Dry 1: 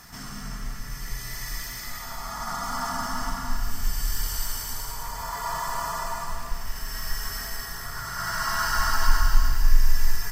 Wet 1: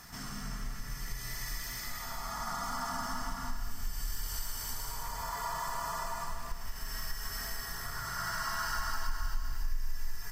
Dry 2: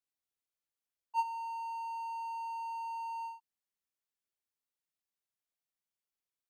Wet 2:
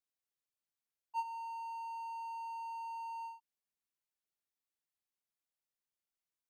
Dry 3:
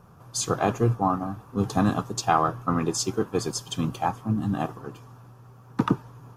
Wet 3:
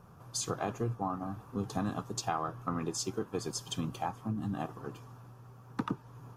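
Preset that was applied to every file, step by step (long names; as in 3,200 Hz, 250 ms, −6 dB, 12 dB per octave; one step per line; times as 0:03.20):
downward compressor 2.5 to 1, threshold −30 dBFS
level −3.5 dB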